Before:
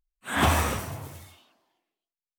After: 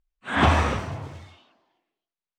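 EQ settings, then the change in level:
high-frequency loss of the air 140 metres
+4.0 dB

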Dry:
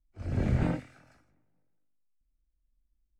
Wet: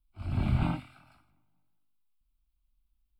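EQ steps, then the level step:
low-shelf EQ 490 Hz −5.5 dB
phaser with its sweep stopped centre 1,800 Hz, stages 6
+6.0 dB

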